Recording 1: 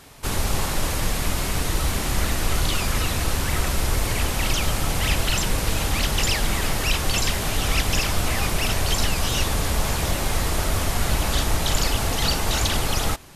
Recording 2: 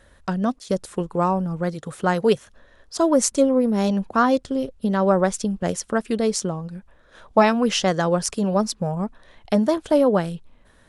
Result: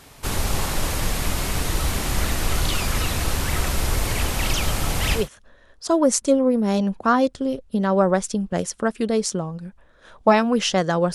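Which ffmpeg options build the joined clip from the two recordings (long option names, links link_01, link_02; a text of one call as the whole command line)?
ffmpeg -i cue0.wav -i cue1.wav -filter_complex "[0:a]apad=whole_dur=11.14,atrim=end=11.14,atrim=end=5.29,asetpts=PTS-STARTPTS[link_01];[1:a]atrim=start=2.23:end=8.24,asetpts=PTS-STARTPTS[link_02];[link_01][link_02]acrossfade=duration=0.16:curve1=tri:curve2=tri" out.wav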